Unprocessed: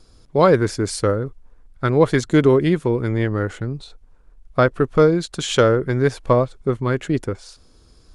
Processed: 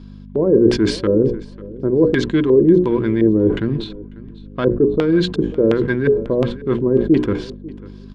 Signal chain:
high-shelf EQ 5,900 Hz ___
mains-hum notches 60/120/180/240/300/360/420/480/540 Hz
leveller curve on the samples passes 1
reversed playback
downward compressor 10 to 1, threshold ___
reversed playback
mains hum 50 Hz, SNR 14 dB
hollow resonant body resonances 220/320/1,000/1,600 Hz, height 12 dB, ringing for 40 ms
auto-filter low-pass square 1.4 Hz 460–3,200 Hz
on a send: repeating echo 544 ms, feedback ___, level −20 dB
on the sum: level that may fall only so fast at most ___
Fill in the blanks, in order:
+4.5 dB, −22 dBFS, 20%, 110 dB per second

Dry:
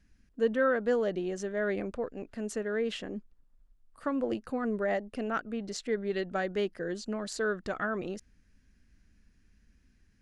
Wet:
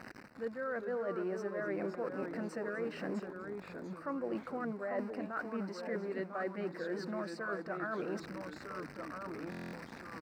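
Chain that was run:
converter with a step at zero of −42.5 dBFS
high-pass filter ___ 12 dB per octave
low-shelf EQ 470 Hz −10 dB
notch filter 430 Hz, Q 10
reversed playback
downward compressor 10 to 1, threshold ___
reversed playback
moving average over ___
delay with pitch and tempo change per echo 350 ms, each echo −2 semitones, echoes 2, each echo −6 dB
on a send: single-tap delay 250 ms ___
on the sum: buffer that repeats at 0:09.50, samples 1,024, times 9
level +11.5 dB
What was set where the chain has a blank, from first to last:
170 Hz, −46 dBFS, 13 samples, −16.5 dB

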